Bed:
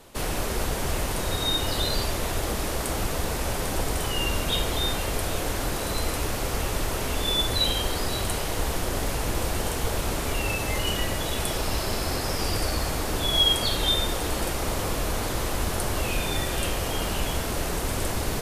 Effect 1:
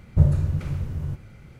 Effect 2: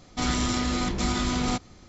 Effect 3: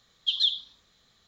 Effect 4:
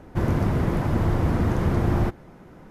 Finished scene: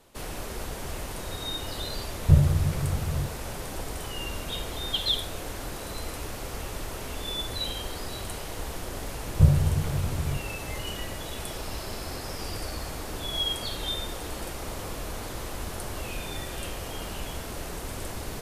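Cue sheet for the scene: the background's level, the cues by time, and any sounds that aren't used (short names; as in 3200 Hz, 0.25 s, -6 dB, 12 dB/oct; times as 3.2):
bed -8 dB
2.12 add 1 -0.5 dB
4.66 add 3 -2.5 dB + mismatched tape noise reduction decoder only
9.23 add 1 -1 dB
not used: 2, 4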